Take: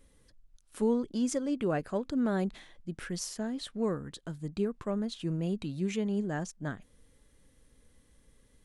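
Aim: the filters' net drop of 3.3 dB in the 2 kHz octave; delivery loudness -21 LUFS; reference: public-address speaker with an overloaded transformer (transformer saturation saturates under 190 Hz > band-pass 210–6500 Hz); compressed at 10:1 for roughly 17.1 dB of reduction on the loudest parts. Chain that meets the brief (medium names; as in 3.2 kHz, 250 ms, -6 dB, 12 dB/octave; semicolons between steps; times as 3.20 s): peaking EQ 2 kHz -4.5 dB; compression 10:1, threshold -43 dBFS; transformer saturation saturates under 190 Hz; band-pass 210–6500 Hz; trim +29 dB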